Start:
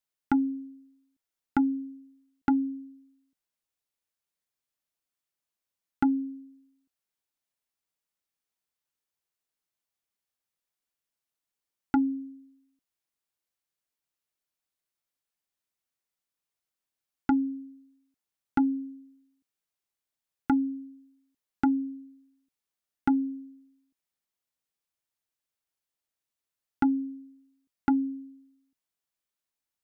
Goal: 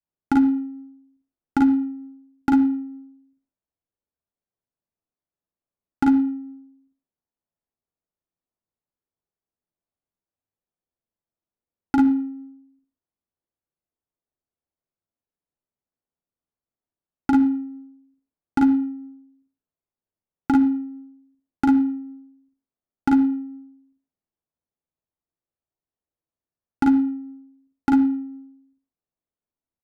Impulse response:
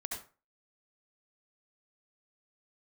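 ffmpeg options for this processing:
-filter_complex "[0:a]aecho=1:1:40|52:0.631|0.631,asplit=2[a][b];[1:a]atrim=start_sample=2205[c];[b][c]afir=irnorm=-1:irlink=0,volume=-8dB[d];[a][d]amix=inputs=2:normalize=0,adynamicequalizer=threshold=0.0355:dfrequency=270:dqfactor=0.98:tfrequency=270:tqfactor=0.98:attack=5:release=100:ratio=0.375:range=3:mode=cutabove:tftype=bell,adynamicsmooth=sensitivity=7:basefreq=830,volume=1.5dB"

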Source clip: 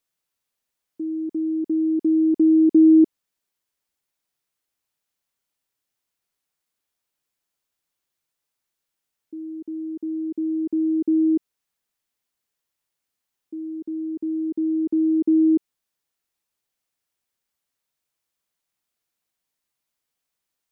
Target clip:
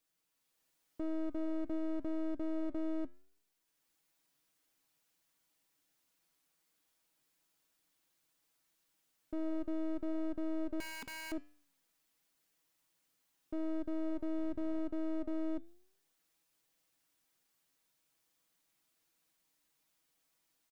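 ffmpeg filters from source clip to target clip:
-filter_complex "[0:a]equalizer=f=270:t=o:w=0.3:g=8,aecho=1:1:6.2:0.67,dynaudnorm=f=300:g=3:m=5dB,alimiter=level_in=3dB:limit=-24dB:level=0:latency=1:release=121,volume=-3dB,asettb=1/sr,asplit=3[a][b][c];[a]atrim=end=10.804[d];[b]atrim=start=10.8:end=11.32,asetpts=PTS-STARTPTS,afade=t=in:d=0.004:c=qsin,afade=t=out:st=0.516:d=0.004:c=qsin,aeval=exprs='(mod(53.1*val(0)+1,2)-1)/53.1':c=same[e];[c]atrim=start=11.316[f];[d][e]acrossfade=d=0.004:c1=hsin:c2=qsin[g];[g][f]acrossfade=d=0.004:c1=qsin:c2=hsin,asettb=1/sr,asplit=3[h][i][j];[h]atrim=end=14.374[k];[i]atrim=start=14.37:end=14.8,asetpts=PTS-STARTPTS,afade=t=in:d=0.004:c=qsin,afade=t=out:st=0.426:d=0.004:c=qsin,aeval=exprs='val(0)+0.00178*(sin(2*PI*60*n/s)+sin(2*PI*2*60*n/s)/2+sin(2*PI*3*60*n/s)/3+sin(2*PI*4*60*n/s)/4+sin(2*PI*5*60*n/s)/5)':c=same[l];[j]atrim=start=14.796[m];[k][l]acrossfade=d=0.004:c1=hsin:c2=qsin[n];[n][m]acrossfade=d=0.004:c1=qsin:c2=hsin,aeval=exprs='clip(val(0),-1,0.00668)':c=same,flanger=delay=10:depth=2.3:regen=89:speed=0.87:shape=sinusoidal,volume=1.5dB"

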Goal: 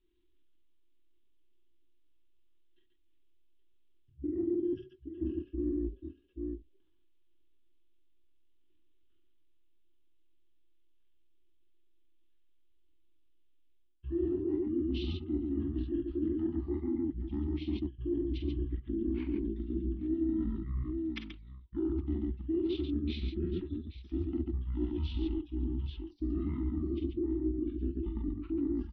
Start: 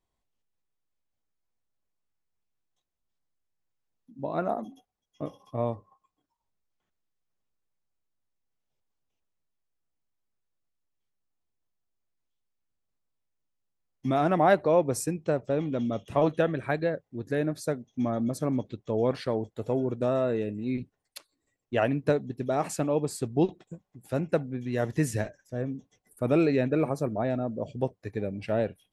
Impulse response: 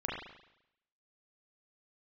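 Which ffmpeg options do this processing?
-af "equalizer=f=6.7k:w=1.4:g=13.5,alimiter=limit=-18dB:level=0:latency=1:release=31,firequalizer=gain_entry='entry(100,0);entry(140,2);entry(210,-19);entry(320,-17);entry(700,9);entry(1000,-28);entry(1900,-14);entry(3200,-16);entry(5400,-12);entry(11000,-27)':delay=0.05:min_phase=1,aecho=1:1:40|52|56|138|826:0.531|0.133|0.299|0.596|0.158,areverse,acompressor=threshold=-41dB:ratio=4,areverse,asetrate=22050,aresample=44100,atempo=2,volume=8.5dB"

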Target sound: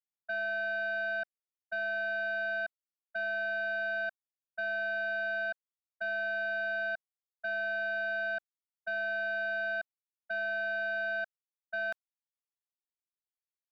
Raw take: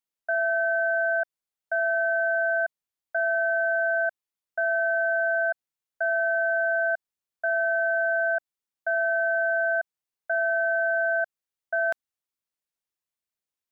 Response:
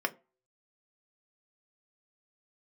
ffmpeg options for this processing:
-af "equalizer=f=1.4k:t=o:w=0.83:g=4,agate=range=-33dB:threshold=-15dB:ratio=3:detection=peak,alimiter=level_in=10.5dB:limit=-24dB:level=0:latency=1:release=27,volume=-10.5dB,aeval=exprs='(tanh(14.1*val(0)+0.35)-tanh(0.35))/14.1':c=same,aeval=exprs='0.0891*sin(PI/2*5.01*val(0)/0.0891)':c=same,volume=-8dB"

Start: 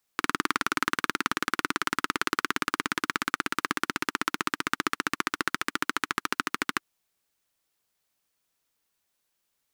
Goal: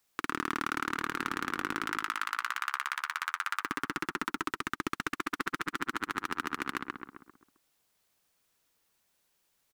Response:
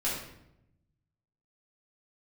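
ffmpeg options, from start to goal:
-filter_complex "[0:a]asoftclip=type=tanh:threshold=-12dB,asplit=3[a][b][c];[a]afade=t=out:st=1.86:d=0.02[d];[b]highpass=f=880:w=0.5412,highpass=f=880:w=1.3066,afade=t=in:st=1.86:d=0.02,afade=t=out:st=3.61:d=0.02[e];[c]afade=t=in:st=3.61:d=0.02[f];[d][e][f]amix=inputs=3:normalize=0,asplit=2[g][h];[h]adelay=132,lowpass=f=1.9k:p=1,volume=-3.5dB,asplit=2[i][j];[j]adelay=132,lowpass=f=1.9k:p=1,volume=0.47,asplit=2[k][l];[l]adelay=132,lowpass=f=1.9k:p=1,volume=0.47,asplit=2[m][n];[n]adelay=132,lowpass=f=1.9k:p=1,volume=0.47,asplit=2[o][p];[p]adelay=132,lowpass=f=1.9k:p=1,volume=0.47,asplit=2[q][r];[r]adelay=132,lowpass=f=1.9k:p=1,volume=0.47[s];[g][i][k][m][o][q][s]amix=inputs=7:normalize=0,alimiter=limit=-19.5dB:level=0:latency=1:release=436,volume=3dB"

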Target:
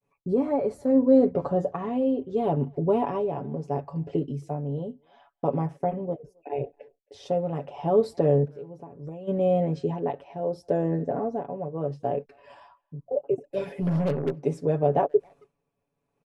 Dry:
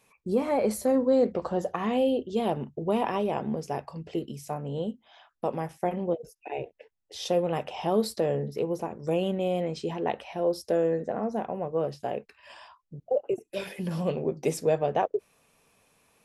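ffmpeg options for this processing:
-filter_complex "[0:a]agate=range=-33dB:threshold=-56dB:ratio=3:detection=peak,tremolo=f=0.73:d=0.5,lowpass=f=10k:w=0.5412,lowpass=f=10k:w=1.3066,aecho=1:1:7.1:0.71,asplit=3[a][b][c];[a]afade=t=out:st=8.44:d=0.02[d];[b]acompressor=threshold=-40dB:ratio=16,afade=t=in:st=8.44:d=0.02,afade=t=out:st=9.27:d=0.02[e];[c]afade=t=in:st=9.27:d=0.02[f];[d][e][f]amix=inputs=3:normalize=0,tiltshelf=f=1.3k:g=9.5,asplit=3[g][h][i];[g]afade=t=out:st=13.81:d=0.02[j];[h]aeval=exprs='0.178*(cos(1*acos(clip(val(0)/0.178,-1,1)))-cos(1*PI/2))+0.0141*(cos(6*acos(clip(val(0)/0.178,-1,1)))-cos(6*PI/2))':c=same,afade=t=in:st=13.81:d=0.02,afade=t=out:st=14.34:d=0.02[k];[i]afade=t=in:st=14.34:d=0.02[l];[j][k][l]amix=inputs=3:normalize=0,asplit=2[m][n];[n]adelay=270,highpass=300,lowpass=3.4k,asoftclip=type=hard:threshold=-17dB,volume=-30dB[o];[m][o]amix=inputs=2:normalize=0,volume=-3.5dB"

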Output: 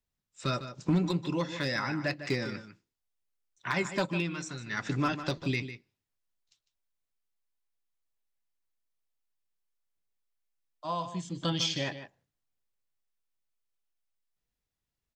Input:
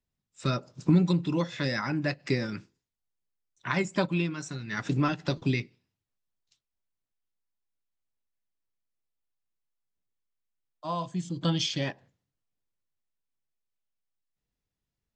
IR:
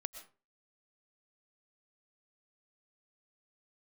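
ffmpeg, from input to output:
-filter_complex "[0:a]equalizer=f=170:w=0.5:g=-5,asoftclip=type=hard:threshold=-20dB,asplit=2[a][b];[b]adelay=151.6,volume=-11dB,highshelf=f=4k:g=-3.41[c];[a][c]amix=inputs=2:normalize=0"

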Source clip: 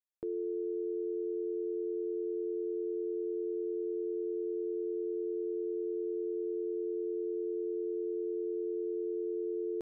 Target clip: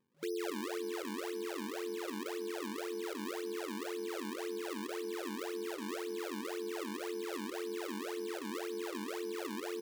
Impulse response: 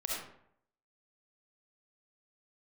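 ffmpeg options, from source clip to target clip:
-af "afftfilt=real='re*between(b*sr/4096,160,560)':imag='im*between(b*sr/4096,160,560)':win_size=4096:overlap=0.75,adynamicequalizer=threshold=0.00398:dfrequency=330:dqfactor=1.1:tfrequency=330:tqfactor=1.1:attack=5:release=100:ratio=0.375:range=2:mode=cutabove:tftype=bell,acompressor=mode=upward:threshold=-55dB:ratio=2.5,acrusher=samples=38:mix=1:aa=0.000001:lfo=1:lforange=60.8:lforate=1.9,aecho=1:1:279|558|837|1116|1395|1674:0.251|0.143|0.0816|0.0465|0.0265|0.0151,volume=-1dB"

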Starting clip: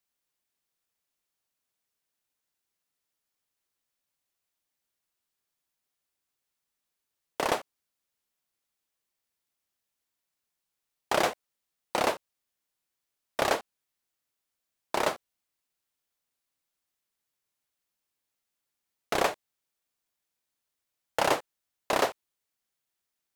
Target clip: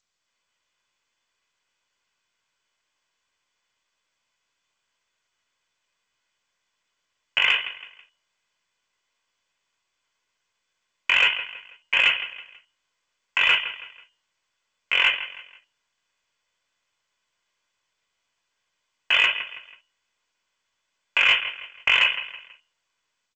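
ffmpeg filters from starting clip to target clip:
-af "equalizer=f=2.5k:t=o:w=0.53:g=-7.5,bandreject=f=60:t=h:w=6,bandreject=f=120:t=h:w=6,bandreject=f=180:t=h:w=6,bandreject=f=240:t=h:w=6,bandreject=f=300:t=h:w=6,bandreject=f=360:t=h:w=6,bandreject=f=420:t=h:w=6,bandreject=f=480:t=h:w=6,bandreject=f=540:t=h:w=6,aecho=1:1:2.7:0.51,dynaudnorm=f=110:g=5:m=7.5dB,asetrate=58866,aresample=44100,atempo=0.749154,lowpass=f=3k:t=q:w=0.5098,lowpass=f=3k:t=q:w=0.6013,lowpass=f=3k:t=q:w=0.9,lowpass=f=3k:t=q:w=2.563,afreqshift=-3500,aecho=1:1:163|326|489:0.126|0.0441|0.0154,acontrast=72,alimiter=level_in=7.5dB:limit=-1dB:release=50:level=0:latency=1,volume=-8.5dB" -ar 16000 -c:a g722

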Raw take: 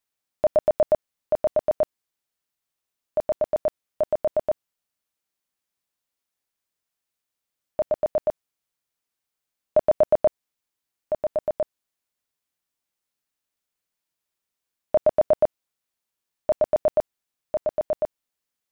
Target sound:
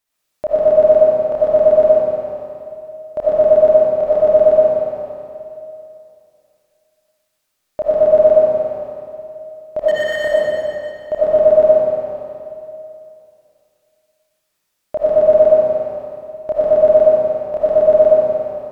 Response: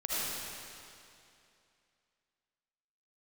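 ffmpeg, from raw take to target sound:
-filter_complex "[0:a]alimiter=limit=-18.5dB:level=0:latency=1,asplit=3[a][b][c];[a]afade=t=out:st=9.79:d=0.02[d];[b]aeval=exprs='0.0447*(abs(mod(val(0)/0.0447+3,4)-2)-1)':c=same,afade=t=in:st=9.79:d=0.02,afade=t=out:st=10.22:d=0.02[e];[c]afade=t=in:st=10.22:d=0.02[f];[d][e][f]amix=inputs=3:normalize=0[g];[1:a]atrim=start_sample=2205,asetrate=42336,aresample=44100[h];[g][h]afir=irnorm=-1:irlink=0,volume=6.5dB"

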